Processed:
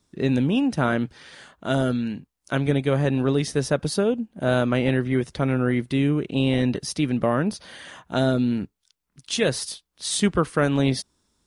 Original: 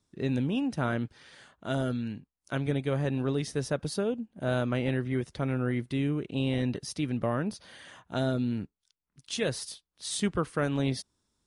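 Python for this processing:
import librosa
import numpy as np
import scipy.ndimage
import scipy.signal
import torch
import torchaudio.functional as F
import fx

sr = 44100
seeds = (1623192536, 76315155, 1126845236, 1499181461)

y = fx.peak_eq(x, sr, hz=110.0, db=-9.0, octaves=0.23)
y = y * librosa.db_to_amplitude(8.0)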